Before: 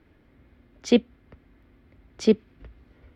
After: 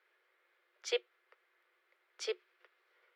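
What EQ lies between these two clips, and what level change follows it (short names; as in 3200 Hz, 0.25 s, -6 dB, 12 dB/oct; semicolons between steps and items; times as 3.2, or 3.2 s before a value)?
rippled Chebyshev high-pass 350 Hz, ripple 6 dB; LPF 1800 Hz 6 dB/oct; differentiator; +11.5 dB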